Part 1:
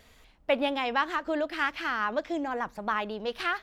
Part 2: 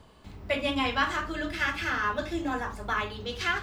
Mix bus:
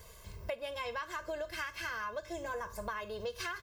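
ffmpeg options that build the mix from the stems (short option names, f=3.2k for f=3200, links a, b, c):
-filter_complex "[0:a]volume=-5dB,asplit=2[a][b];[1:a]volume=-6.5dB[c];[b]apad=whole_len=159811[d];[c][d]sidechaincompress=threshold=-36dB:ratio=4:attack=7.2:release=653[e];[a][e]amix=inputs=2:normalize=0,aecho=1:1:1.9:0.89,aexciter=amount=1.6:drive=9.2:freq=5k,acompressor=threshold=-36dB:ratio=6"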